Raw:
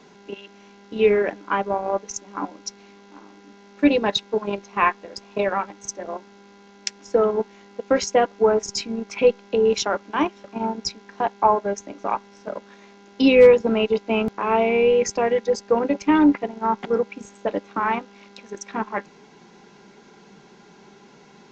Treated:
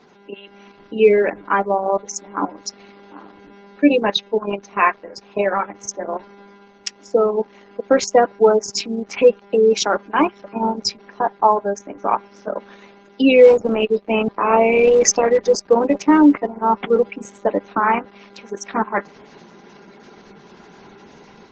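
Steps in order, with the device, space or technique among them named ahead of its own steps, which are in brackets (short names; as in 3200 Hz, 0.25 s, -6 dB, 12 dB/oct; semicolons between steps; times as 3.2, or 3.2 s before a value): noise-suppressed video call (HPF 140 Hz 6 dB/oct; spectral gate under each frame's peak -25 dB strong; AGC gain up to 7 dB; Opus 12 kbps 48000 Hz)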